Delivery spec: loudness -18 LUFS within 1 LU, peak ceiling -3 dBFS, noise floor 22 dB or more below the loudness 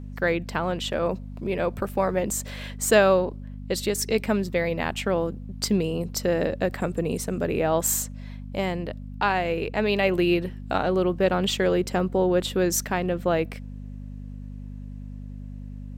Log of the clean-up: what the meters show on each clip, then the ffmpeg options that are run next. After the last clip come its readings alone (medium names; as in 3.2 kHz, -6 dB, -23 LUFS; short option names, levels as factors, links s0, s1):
hum 50 Hz; highest harmonic 250 Hz; hum level -34 dBFS; loudness -25.0 LUFS; peak level -6.0 dBFS; loudness target -18.0 LUFS
-> -af "bandreject=f=50:t=h:w=4,bandreject=f=100:t=h:w=4,bandreject=f=150:t=h:w=4,bandreject=f=200:t=h:w=4,bandreject=f=250:t=h:w=4"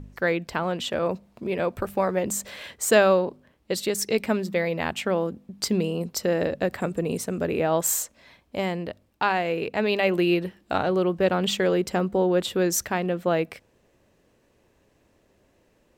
hum not found; loudness -25.0 LUFS; peak level -6.0 dBFS; loudness target -18.0 LUFS
-> -af "volume=2.24,alimiter=limit=0.708:level=0:latency=1"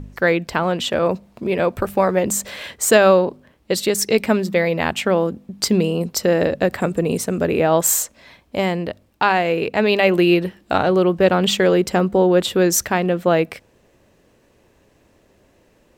loudness -18.5 LUFS; peak level -3.0 dBFS; noise floor -58 dBFS